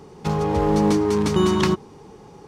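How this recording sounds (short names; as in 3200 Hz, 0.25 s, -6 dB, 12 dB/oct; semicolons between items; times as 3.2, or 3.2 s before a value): noise floor -46 dBFS; spectral tilt -6.0 dB/oct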